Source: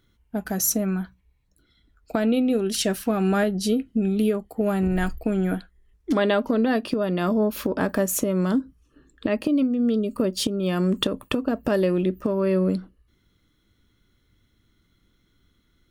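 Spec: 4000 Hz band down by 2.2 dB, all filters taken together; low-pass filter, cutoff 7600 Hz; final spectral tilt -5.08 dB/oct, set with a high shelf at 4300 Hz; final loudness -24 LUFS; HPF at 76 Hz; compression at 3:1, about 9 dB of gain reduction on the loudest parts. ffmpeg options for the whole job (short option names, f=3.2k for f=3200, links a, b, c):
-af "highpass=76,lowpass=7.6k,equalizer=f=4k:t=o:g=-4.5,highshelf=f=4.3k:g=3.5,acompressor=threshold=-31dB:ratio=3,volume=8.5dB"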